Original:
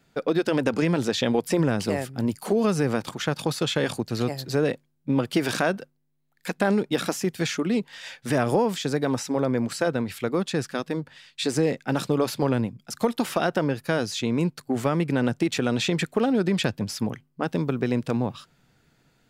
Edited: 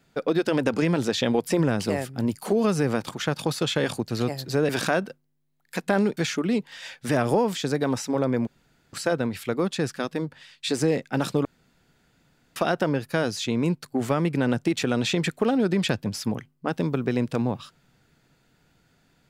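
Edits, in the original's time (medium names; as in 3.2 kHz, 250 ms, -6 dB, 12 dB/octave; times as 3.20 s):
4.69–5.41 s: delete
6.89–7.38 s: delete
9.68 s: insert room tone 0.46 s
12.20–13.31 s: room tone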